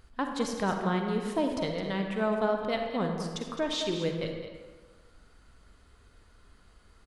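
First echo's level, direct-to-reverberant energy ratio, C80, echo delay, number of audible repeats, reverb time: -10.0 dB, 2.5 dB, 4.5 dB, 0.212 s, 1, 1.6 s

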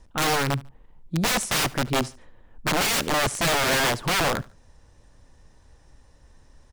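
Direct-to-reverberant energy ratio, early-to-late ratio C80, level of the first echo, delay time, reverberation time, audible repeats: none, none, -22.0 dB, 73 ms, none, 2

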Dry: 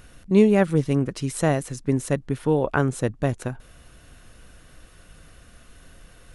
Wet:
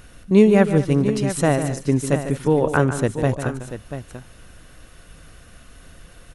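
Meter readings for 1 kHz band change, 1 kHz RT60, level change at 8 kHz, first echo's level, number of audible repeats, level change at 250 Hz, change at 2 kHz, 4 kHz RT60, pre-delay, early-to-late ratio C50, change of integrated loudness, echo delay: +4.0 dB, none, +4.0 dB, -10.5 dB, 3, +3.5 dB, +3.5 dB, none, none, none, +3.5 dB, 0.148 s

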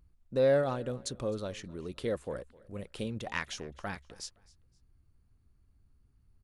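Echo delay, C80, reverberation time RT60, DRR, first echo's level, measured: 0.259 s, none, none, none, -22.5 dB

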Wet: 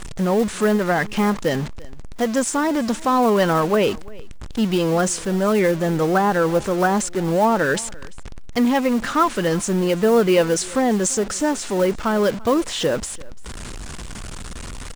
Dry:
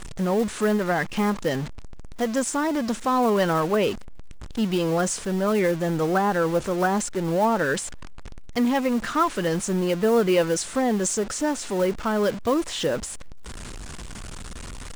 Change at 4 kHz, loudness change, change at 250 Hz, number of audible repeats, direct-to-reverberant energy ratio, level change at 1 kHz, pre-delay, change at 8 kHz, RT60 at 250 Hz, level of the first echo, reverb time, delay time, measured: +4.0 dB, +4.0 dB, +4.0 dB, 1, none, +4.0 dB, none, +4.0 dB, none, -23.0 dB, none, 0.342 s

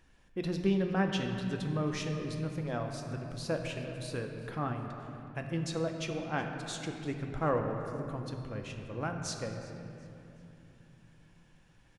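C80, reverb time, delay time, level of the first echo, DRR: 5.0 dB, 3.0 s, 0.368 s, -19.0 dB, 3.0 dB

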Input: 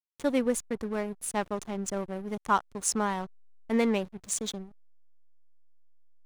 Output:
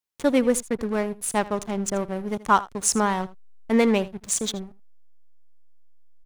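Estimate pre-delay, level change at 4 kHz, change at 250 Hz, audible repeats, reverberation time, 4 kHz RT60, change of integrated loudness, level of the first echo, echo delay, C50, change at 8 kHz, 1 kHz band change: none, +6.5 dB, +6.5 dB, 1, none, none, +6.5 dB, -18.5 dB, 80 ms, none, +6.5 dB, +6.5 dB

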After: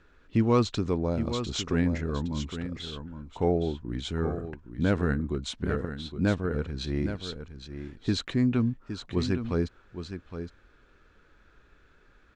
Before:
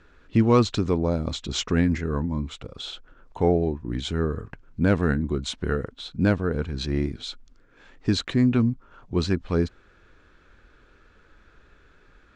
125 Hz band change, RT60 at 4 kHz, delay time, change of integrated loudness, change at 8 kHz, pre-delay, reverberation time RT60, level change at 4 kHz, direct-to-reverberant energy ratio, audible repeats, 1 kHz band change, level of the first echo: -4.0 dB, none, 0.815 s, -4.5 dB, -4.0 dB, none, none, -4.0 dB, none, 1, -4.0 dB, -9.5 dB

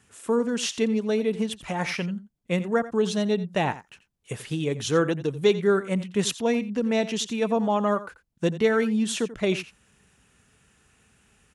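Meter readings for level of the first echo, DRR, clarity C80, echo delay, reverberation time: -15.5 dB, none, none, 87 ms, none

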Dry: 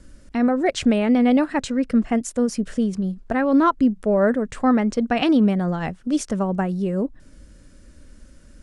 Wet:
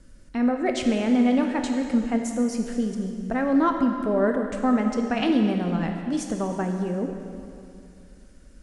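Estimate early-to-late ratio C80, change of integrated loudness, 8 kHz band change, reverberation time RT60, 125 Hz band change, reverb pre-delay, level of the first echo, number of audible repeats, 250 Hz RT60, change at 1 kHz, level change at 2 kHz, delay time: 6.0 dB, -3.5 dB, -3.5 dB, 2.6 s, -4.0 dB, 5 ms, none, none, 2.5 s, -3.5 dB, -3.5 dB, none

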